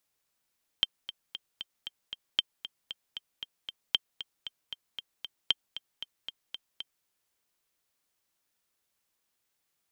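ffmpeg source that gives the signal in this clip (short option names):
-f lavfi -i "aevalsrc='pow(10,(-10-14*gte(mod(t,6*60/231),60/231))/20)*sin(2*PI*3150*mod(t,60/231))*exp(-6.91*mod(t,60/231)/0.03)':d=6.23:s=44100"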